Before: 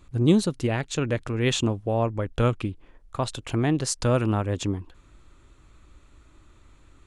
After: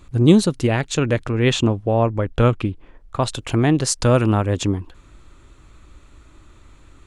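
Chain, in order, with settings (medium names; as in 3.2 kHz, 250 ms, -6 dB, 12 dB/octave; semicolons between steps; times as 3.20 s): 1.26–3.20 s: treble shelf 5.8 kHz -9.5 dB; trim +6.5 dB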